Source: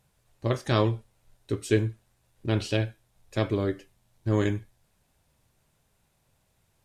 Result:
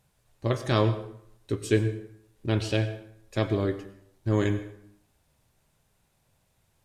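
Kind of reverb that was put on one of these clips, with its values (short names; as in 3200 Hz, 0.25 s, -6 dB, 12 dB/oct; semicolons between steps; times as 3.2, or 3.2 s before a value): plate-style reverb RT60 0.72 s, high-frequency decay 0.7×, pre-delay 85 ms, DRR 12.5 dB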